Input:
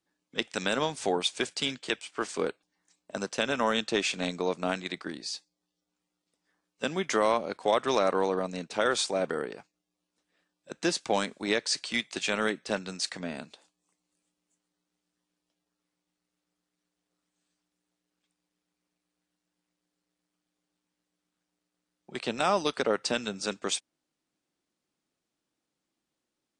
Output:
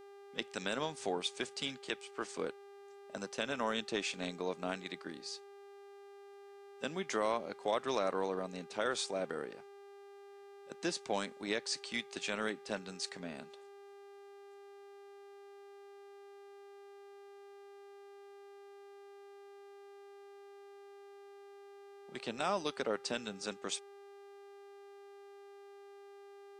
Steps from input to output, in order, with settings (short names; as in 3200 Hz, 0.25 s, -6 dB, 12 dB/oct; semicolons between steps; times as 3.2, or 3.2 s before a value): buzz 400 Hz, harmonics 38, -46 dBFS -9 dB/oct; gain -8.5 dB